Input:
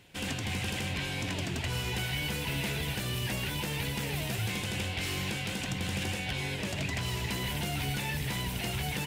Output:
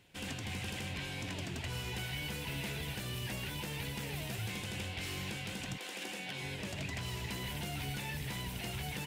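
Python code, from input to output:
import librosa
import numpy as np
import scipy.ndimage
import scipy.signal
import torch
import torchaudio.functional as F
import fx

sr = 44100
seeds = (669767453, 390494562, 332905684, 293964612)

y = fx.highpass(x, sr, hz=fx.line((5.76, 400.0), (6.41, 130.0)), slope=24, at=(5.76, 6.41), fade=0.02)
y = y * librosa.db_to_amplitude(-6.5)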